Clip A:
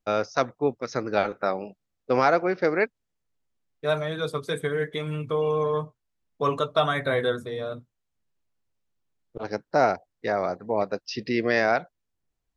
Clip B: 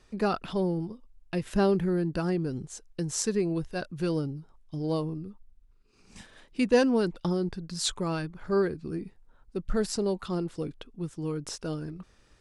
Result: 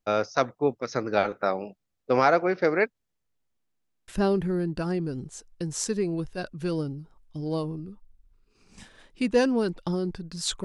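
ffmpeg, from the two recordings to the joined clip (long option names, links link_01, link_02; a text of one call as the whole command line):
ffmpeg -i cue0.wav -i cue1.wav -filter_complex "[0:a]apad=whole_dur=10.64,atrim=end=10.64,asplit=7[link_01][link_02][link_03][link_04][link_05][link_06][link_07];[link_01]atrim=end=3.662[link_08];[link_02]atrim=start=3.588:end=3.662[link_09];[link_03]atrim=start=3.588:end=3.662[link_10];[link_04]atrim=start=3.588:end=3.662[link_11];[link_05]atrim=start=3.588:end=3.662[link_12];[link_06]atrim=start=3.588:end=3.662[link_13];[link_07]atrim=start=3.588:end=3.662[link_14];[1:a]atrim=start=1.458:end=8.02[link_15];[link_08][link_09]acrossfade=duration=0.004:curve1=hsin:curve2=hsin[link_16];[link_16][link_10]acrossfade=duration=0.004:curve1=hsin:curve2=hsin[link_17];[link_17][link_11]acrossfade=duration=0.004:curve1=hsin:curve2=hsin[link_18];[link_18][link_12]acrossfade=duration=0.004:curve1=hsin:curve2=hsin[link_19];[link_19][link_13]acrossfade=duration=0.004:curve1=hsin:curve2=hsin[link_20];[link_20][link_14]acrossfade=duration=0.004:curve1=hsin:curve2=hsin[link_21];[link_21][link_15]acrossfade=duration=0.004:curve1=hsin:curve2=hsin" out.wav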